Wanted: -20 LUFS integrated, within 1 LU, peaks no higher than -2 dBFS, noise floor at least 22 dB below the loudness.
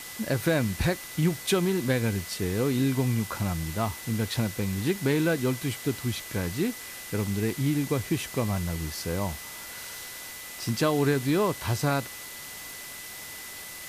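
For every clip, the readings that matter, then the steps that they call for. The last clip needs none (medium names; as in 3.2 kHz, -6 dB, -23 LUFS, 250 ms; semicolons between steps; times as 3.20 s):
steady tone 2 kHz; tone level -45 dBFS; noise floor -41 dBFS; noise floor target -51 dBFS; loudness -28.5 LUFS; peak level -12.5 dBFS; loudness target -20.0 LUFS
-> band-stop 2 kHz, Q 30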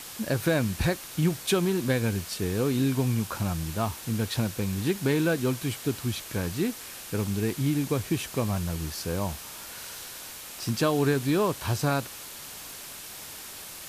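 steady tone not found; noise floor -42 dBFS; noise floor target -51 dBFS
-> noise reduction 9 dB, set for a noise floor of -42 dBFS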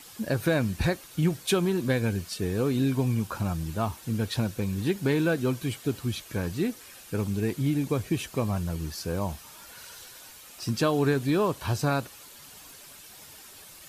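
noise floor -49 dBFS; noise floor target -50 dBFS
-> noise reduction 6 dB, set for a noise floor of -49 dBFS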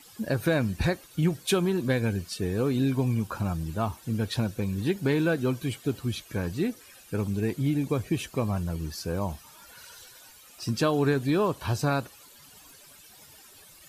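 noise floor -53 dBFS; loudness -28.5 LUFS; peak level -12.5 dBFS; loudness target -20.0 LUFS
-> trim +8.5 dB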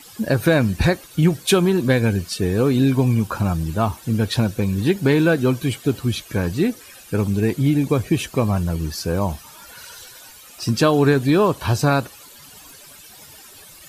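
loudness -20.0 LUFS; peak level -4.0 dBFS; noise floor -44 dBFS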